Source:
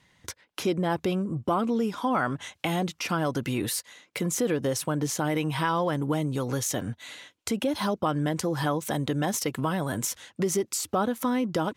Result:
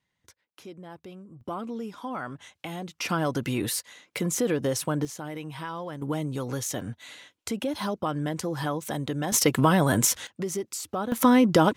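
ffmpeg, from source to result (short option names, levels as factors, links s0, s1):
-af "asetnsamples=n=441:p=0,asendcmd='1.41 volume volume -8.5dB;3 volume volume 0.5dB;5.05 volume volume -9.5dB;6.02 volume volume -2.5dB;9.32 volume volume 7.5dB;10.27 volume volume -4.5dB;11.12 volume volume 8dB',volume=0.141"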